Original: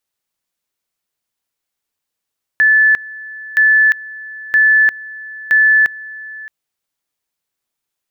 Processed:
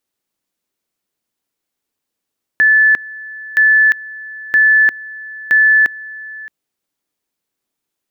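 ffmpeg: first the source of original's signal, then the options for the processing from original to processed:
-f lavfi -i "aevalsrc='pow(10,(-7-20.5*gte(mod(t,0.97),0.35))/20)*sin(2*PI*1740*t)':d=3.88:s=44100"
-af "equalizer=f=290:t=o:w=1.6:g=8.5"

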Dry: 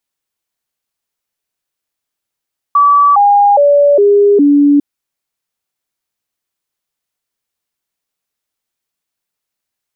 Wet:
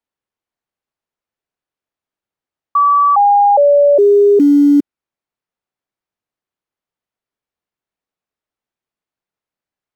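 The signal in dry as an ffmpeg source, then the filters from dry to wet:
-f lavfi -i "aevalsrc='0.596*clip(min(mod(t,0.41),0.41-mod(t,0.41))/0.005,0,1)*sin(2*PI*1150*pow(2,-floor(t/0.41)/2)*mod(t,0.41))':d=2.05:s=44100"
-filter_complex "[0:a]lowpass=f=1200:p=1,lowshelf=f=120:g=-3.5,acrossover=split=200|320|540[s0][s1][s2][s3];[s0]acrusher=bits=4:mode=log:mix=0:aa=0.000001[s4];[s4][s1][s2][s3]amix=inputs=4:normalize=0"

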